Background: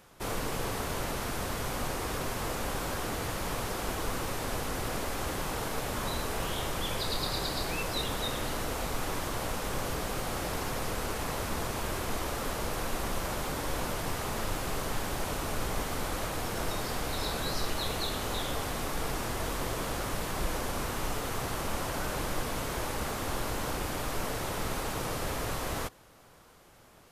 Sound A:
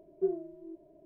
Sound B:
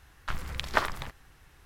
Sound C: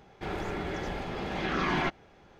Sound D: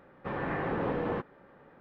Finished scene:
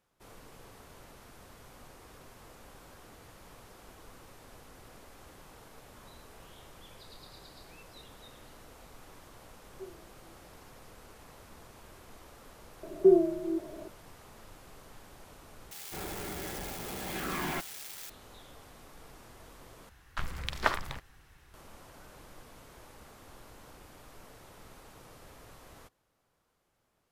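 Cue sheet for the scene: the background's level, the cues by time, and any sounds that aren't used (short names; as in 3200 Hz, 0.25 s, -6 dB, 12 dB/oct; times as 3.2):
background -19.5 dB
9.58 add A -16.5 dB
12.83 add A -11 dB + maximiser +25 dB
15.71 replace with C -6.5 dB + switching spikes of -24.5 dBFS
19.89 replace with B -2 dB
not used: D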